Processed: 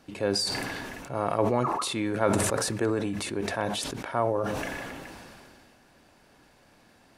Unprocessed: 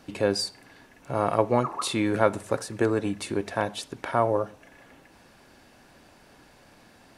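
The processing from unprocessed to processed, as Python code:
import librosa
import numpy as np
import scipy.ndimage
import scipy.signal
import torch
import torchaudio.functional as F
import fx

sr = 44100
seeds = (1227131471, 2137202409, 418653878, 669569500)

y = fx.sustainer(x, sr, db_per_s=23.0)
y = y * 10.0 ** (-4.5 / 20.0)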